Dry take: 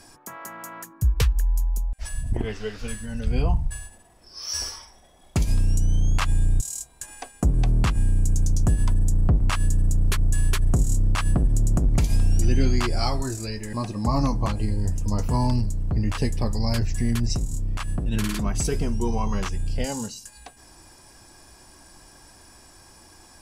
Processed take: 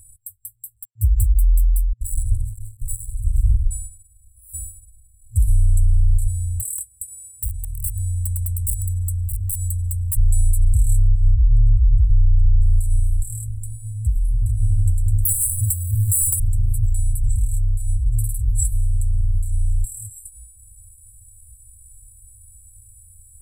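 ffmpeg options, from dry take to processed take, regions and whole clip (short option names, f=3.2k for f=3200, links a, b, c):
-filter_complex "[0:a]asettb=1/sr,asplit=3[a][b][c];[a]atrim=end=0.764[d];[b]atrim=start=0.76:end=3.63,asetpts=PTS-STARTPTS,afade=t=in:d=0.004:c=qsin,afade=t=out:st=2.866:d=0.004:c=qsin,bandreject=f=60:t=h:w=6,bandreject=f=120:t=h:w=6,bandreject=f=180:t=h:w=6,bandreject=f=240:t=h:w=6,bandreject=f=300:t=h:w=6,bandreject=f=360:t=h:w=6,bandreject=f=420:t=h:w=6,bandreject=f=480:t=h:w=6,bandreject=f=540:t=h:w=6,bandreject=f=600:t=h:w=6,acrusher=bits=4:mix=0:aa=0.5[e];[c]atrim=start=3.626[f];[d][e]acrossfade=d=0.004:c1=hsin:c2=qsin[g];[g][f]acrossfade=d=0.004:c1=qsin:c2=hsin,asettb=1/sr,asplit=3[h][i][j];[h]atrim=end=6.284[k];[i]atrim=start=6.28:end=10.17,asetpts=PTS-STARTPTS,afade=t=in:d=0.004:c=qsin,afade=t=out:st=3.886:d=0.004:c=qsin,highpass=130,aeval=exprs='(mod(12.6*val(0)+1,2)-1)/12.6':c=same,aecho=1:1:1.5:0.59,atrim=end_sample=171549[l];[j]atrim=start=10.166[m];[k][l]acrossfade=d=0.004:c1=hsin:c2=qsin[n];[n][m]acrossfade=d=0.004:c1=qsin:c2=hsin,asettb=1/sr,asplit=3[o][p][q];[o]atrim=end=11.084[r];[p]atrim=start=11.08:end=12.62,asetpts=PTS-STARTPTS,afade=t=in:d=0.004:c=qsin,afade=t=out:st=1.536:d=0.004:c=qsin,lowpass=2k,lowshelf=f=85:g=3.5[s];[q]atrim=start=12.616[t];[r][s]acrossfade=d=0.004:c1=hsin:c2=qsin[u];[u][t]acrossfade=d=0.004:c1=qsin:c2=hsin,asettb=1/sr,asplit=3[v][w][x];[v]atrim=end=15.254[y];[w]atrim=start=15.25:end=16.4,asetpts=PTS-STARTPTS,afade=t=in:d=0.004:c=qsin,afade=t=out:st=1.146:d=0.004:c=qsin,highpass=f=94:w=0.5412,highpass=f=94:w=1.3066,aemphasis=mode=production:type=bsi,aeval=exprs='0.188*sin(PI/2*3.98*val(0)/0.188)':c=same[z];[x]atrim=start=16.396[aa];[y][z]acrossfade=d=0.004:c1=hsin:c2=qsin[ab];[ab][aa]acrossfade=d=0.004:c1=qsin:c2=hsin,afftfilt=real='re*(1-between(b*sr/4096,110,7600))':imag='im*(1-between(b*sr/4096,110,7600))':win_size=4096:overlap=0.75,alimiter=limit=-15.5dB:level=0:latency=1:release=115,volume=7.5dB"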